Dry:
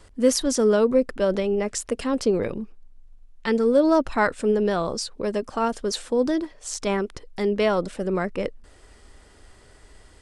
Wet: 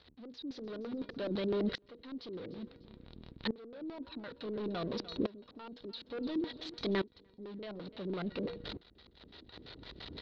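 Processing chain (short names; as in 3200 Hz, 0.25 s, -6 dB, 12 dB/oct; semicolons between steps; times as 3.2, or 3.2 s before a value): zero-crossing step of -30 dBFS; HPF 69 Hz 12 dB/oct; bell 3900 Hz +13.5 dB 0.52 oct; limiter -13.5 dBFS, peak gain reduction 10 dB; resonator 480 Hz, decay 0.59 s, mix 70%; flange 0.98 Hz, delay 4.3 ms, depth 2.4 ms, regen -77%; soft clip -36.5 dBFS, distortion -10 dB; LFO low-pass square 5.9 Hz 300–4200 Hz; air absorption 260 m; feedback echo 0.298 s, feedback 30%, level -19 dB; dB-ramp tremolo swelling 0.57 Hz, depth 22 dB; gain +10.5 dB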